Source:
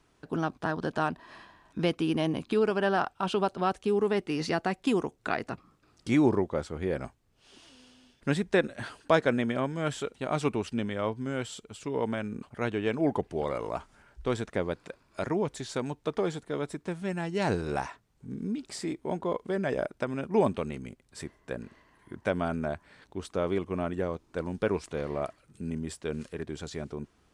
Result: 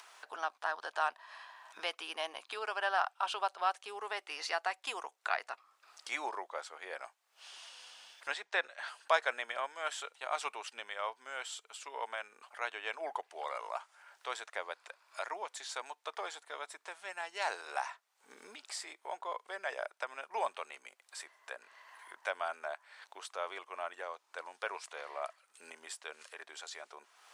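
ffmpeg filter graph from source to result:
-filter_complex "[0:a]asettb=1/sr,asplit=3[s0][s1][s2];[s0]atrim=end=8.324[s3];[s1]atrim=start=8.32:end=8.88,asetpts=PTS-STARTPTS,afade=t=in:d=0.004:c=qsin,afade=t=out:st=0.556:d=0.004:c=qsin,highpass=120,lowpass=6100,bandreject=f=190:w=5.3[s4];[s2]atrim=start=8.876[s5];[s3][s4]acrossfade=d=0.004:c1=hsin:c2=qsin[s6];[s6][s5]acrossfade=d=0.004:c1=qsin:c2=hsin,highpass=f=730:w=0.5412,highpass=f=730:w=1.3066,acompressor=mode=upward:threshold=0.00794:ratio=2.5,volume=0.841"

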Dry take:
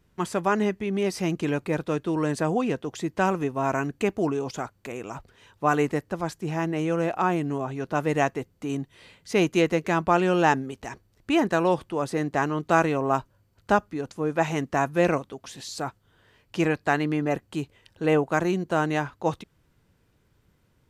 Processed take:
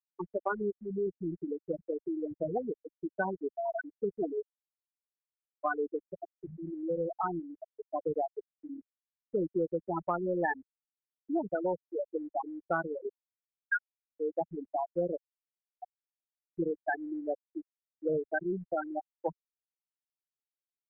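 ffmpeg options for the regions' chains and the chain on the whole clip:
-filter_complex "[0:a]asettb=1/sr,asplit=3[s0][s1][s2];[s0]atrim=end=13.094[s3];[s1]atrim=start=13.09:end=14.17,asetpts=PTS-STARTPTS,afade=t=in:d=0.004:c=qsin,afade=t=out:st=1.076:d=0.004:c=qsin,highpass=f=1400:w=0.5412,highpass=f=1400:w=1.3066,aecho=1:1:6.2:0.99,atrim=end_sample=47628[s4];[s2]atrim=start=14.166[s5];[s3][s4]acrossfade=d=0.004:c1=hsin:c2=qsin[s6];[s6][s5]acrossfade=d=0.004:c1=qsin:c2=hsin,afftfilt=real='re*gte(hypot(re,im),0.355)':imag='im*gte(hypot(re,im),0.355)':win_size=1024:overlap=0.75,equalizer=f=125:t=o:w=1:g=-11,equalizer=f=250:t=o:w=1:g=-11,equalizer=f=1000:t=o:w=1:g=-5,equalizer=f=2000:t=o:w=1:g=10,equalizer=f=4000:t=o:w=1:g=-9,acrossover=split=220|3000[s7][s8][s9];[s8]acompressor=threshold=0.0316:ratio=6[s10];[s7][s10][s9]amix=inputs=3:normalize=0,volume=1.19"

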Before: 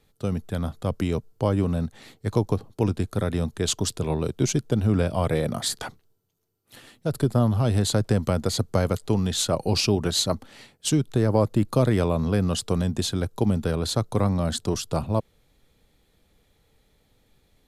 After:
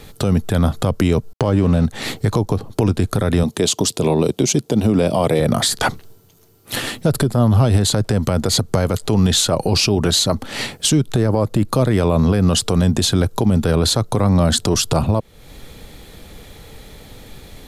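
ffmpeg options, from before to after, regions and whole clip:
-filter_complex "[0:a]asettb=1/sr,asplit=3[s0][s1][s2];[s0]atrim=end=1.334[s3];[s1]atrim=start=1.33:end=1.85,asetpts=PTS-STARTPTS,afade=t=in:d=0.004:c=qsin,afade=t=out:st=0.516:d=0.004:c=qsin,lowpass=8200,aeval=exprs='sgn(val(0))*max(abs(val(0))-0.00562,0)':c=same[s4];[s2]atrim=start=1.846[s5];[s3][s4]acrossfade=d=0.004:c1=hsin:c2=qsin[s6];[s6][s5]acrossfade=d=0.004:c1=qsin:c2=hsin,asettb=1/sr,asplit=3[s7][s8][s9];[s7]atrim=end=3.434[s10];[s8]atrim=start=3.43:end=5.4,asetpts=PTS-STARTPTS,afade=t=in:d=0.004:c=qsin,afade=t=out:st=1.966:d=0.004:c=qsin,highpass=170,equalizer=f=1500:t=o:w=0.79:g=-8[s11];[s9]atrim=start=5.396[s12];[s10][s11]acrossfade=d=0.004:c1=hsin:c2=qsin[s13];[s13][s12]acrossfade=d=0.004:c1=qsin:c2=hsin,acompressor=threshold=0.0126:ratio=3,alimiter=level_in=31.6:limit=0.891:release=50:level=0:latency=1,volume=0.531"

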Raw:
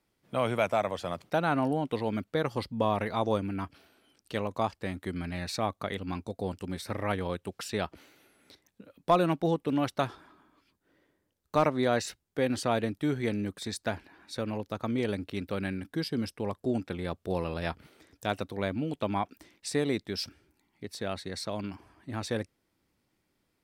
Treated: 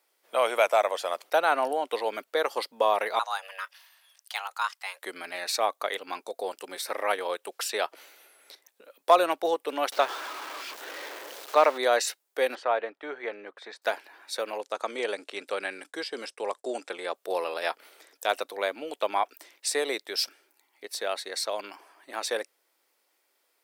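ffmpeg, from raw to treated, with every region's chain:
-filter_complex "[0:a]asettb=1/sr,asplit=3[s0][s1][s2];[s0]atrim=end=3.194[s3];[s1]atrim=start=3.19:end=5.02,asetpts=PTS-STARTPTS,afade=t=in:d=0.004:c=qsin,afade=t=out:st=1.826:d=0.004:c=qsin,highpass=960,afreqshift=280,deesser=0.85[s4];[s2]atrim=start=5.016[s5];[s3][s4]acrossfade=d=0.004:c1=hsin:c2=qsin[s6];[s6][s5]acrossfade=d=0.004:c1=qsin:c2=hsin,asettb=1/sr,asplit=3[s7][s8][s9];[s7]atrim=end=9.924[s10];[s8]atrim=start=9.92:end=11.78,asetpts=PTS-STARTPTS,afade=t=in:d=0.004:c=qsin,afade=t=out:st=1.856:d=0.004:c=qsin,aeval=exprs='val(0)+0.5*0.015*sgn(val(0))':c=same,acrossover=split=5600[s11][s12];[s12]acompressor=threshold=0.001:ratio=4:attack=1:release=60[s13];[s11][s13]amix=inputs=2:normalize=0[s14];[s9]atrim=start=11.776[s15];[s10][s14]acrossfade=d=0.004:c1=hsin:c2=qsin[s16];[s16][s15]acrossfade=d=0.004:c1=qsin:c2=hsin,asettb=1/sr,asplit=3[s17][s18][s19];[s17]atrim=end=12.554[s20];[s18]atrim=start=12.55:end=13.82,asetpts=PTS-STARTPTS,afade=t=in:d=0.004:c=qsin,afade=t=out:st=1.266:d=0.004:c=qsin,lowpass=1800,equalizer=f=250:w=0.73:g=-6.5[s21];[s19]atrim=start=13.816[s22];[s20][s21]acrossfade=d=0.004:c1=hsin:c2=qsin[s23];[s23][s22]acrossfade=d=0.004:c1=qsin:c2=hsin,asettb=1/sr,asplit=3[s24][s25][s26];[s24]atrim=end=14.614[s27];[s25]atrim=start=14.61:end=17.15,asetpts=PTS-STARTPTS,afade=t=in:d=0.004:c=qsin,afade=t=out:st=2.536:d=0.004:c=qsin,acrossover=split=3600[s28][s29];[s29]acompressor=threshold=0.00178:ratio=4:attack=1:release=60[s30];[s28][s30]amix=inputs=2:normalize=0,lowpass=f=8000:t=q:w=2.5,agate=range=0.0224:threshold=0.00224:ratio=3:release=100:detection=peak[s31];[s26]atrim=start=17.146[s32];[s27][s31]acrossfade=d=0.004:c1=hsin:c2=qsin[s33];[s33][s32]acrossfade=d=0.004:c1=qsin:c2=hsin,highpass=f=460:w=0.5412,highpass=f=460:w=1.3066,highshelf=f=9300:g=9,volume=1.88"

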